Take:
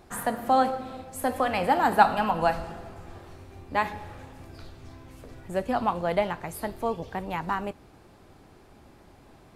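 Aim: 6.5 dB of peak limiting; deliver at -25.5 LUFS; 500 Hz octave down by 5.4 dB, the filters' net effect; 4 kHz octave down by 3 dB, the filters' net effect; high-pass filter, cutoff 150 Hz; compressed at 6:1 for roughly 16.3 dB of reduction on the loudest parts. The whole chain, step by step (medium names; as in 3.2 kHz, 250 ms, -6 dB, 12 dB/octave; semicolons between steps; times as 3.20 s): high-pass 150 Hz; peaking EQ 500 Hz -7 dB; peaking EQ 4 kHz -4 dB; compression 6:1, threshold -32 dBFS; trim +15 dB; peak limiter -12.5 dBFS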